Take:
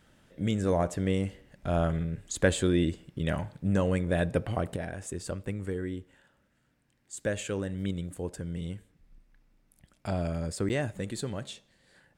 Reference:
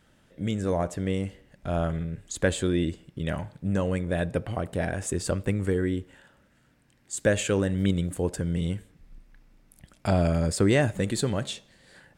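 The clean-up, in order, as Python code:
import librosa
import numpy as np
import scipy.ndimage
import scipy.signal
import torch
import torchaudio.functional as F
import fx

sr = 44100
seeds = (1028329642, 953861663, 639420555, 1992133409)

y = fx.fix_interpolate(x, sr, at_s=(10.69,), length_ms=8.4)
y = fx.fix_level(y, sr, at_s=4.76, step_db=8.0)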